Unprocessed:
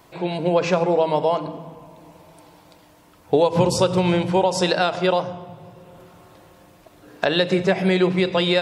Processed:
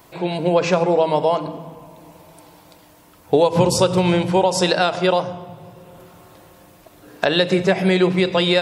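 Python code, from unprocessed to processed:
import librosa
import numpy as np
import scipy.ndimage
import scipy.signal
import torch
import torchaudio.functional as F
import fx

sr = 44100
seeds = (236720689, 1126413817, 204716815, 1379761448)

y = fx.high_shelf(x, sr, hz=9900.0, db=8.5)
y = y * 10.0 ** (2.0 / 20.0)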